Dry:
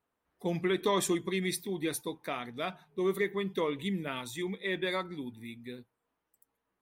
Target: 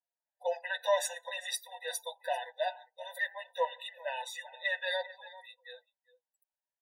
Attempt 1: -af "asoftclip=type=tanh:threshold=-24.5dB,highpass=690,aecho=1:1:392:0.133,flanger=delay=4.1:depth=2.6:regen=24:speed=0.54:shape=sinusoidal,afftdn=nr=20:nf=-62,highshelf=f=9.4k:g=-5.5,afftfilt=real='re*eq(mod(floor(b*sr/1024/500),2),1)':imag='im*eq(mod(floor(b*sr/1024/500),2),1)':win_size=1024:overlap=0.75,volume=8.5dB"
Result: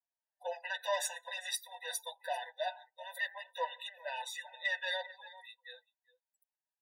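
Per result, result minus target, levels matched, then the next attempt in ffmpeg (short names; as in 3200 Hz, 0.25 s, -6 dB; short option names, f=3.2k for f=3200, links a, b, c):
soft clip: distortion +18 dB; 500 Hz band -3.5 dB
-af "asoftclip=type=tanh:threshold=-13.5dB,highpass=690,aecho=1:1:392:0.133,flanger=delay=4.1:depth=2.6:regen=24:speed=0.54:shape=sinusoidal,afftdn=nr=20:nf=-62,highshelf=f=9.4k:g=-5.5,afftfilt=real='re*eq(mod(floor(b*sr/1024/500),2),1)':imag='im*eq(mod(floor(b*sr/1024/500),2),1)':win_size=1024:overlap=0.75,volume=8.5dB"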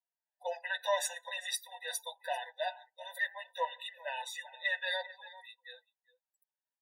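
500 Hz band -3.0 dB
-af "asoftclip=type=tanh:threshold=-13.5dB,highpass=270,aecho=1:1:392:0.133,flanger=delay=4.1:depth=2.6:regen=24:speed=0.54:shape=sinusoidal,afftdn=nr=20:nf=-62,highshelf=f=9.4k:g=-5.5,afftfilt=real='re*eq(mod(floor(b*sr/1024/500),2),1)':imag='im*eq(mod(floor(b*sr/1024/500),2),1)':win_size=1024:overlap=0.75,volume=8.5dB"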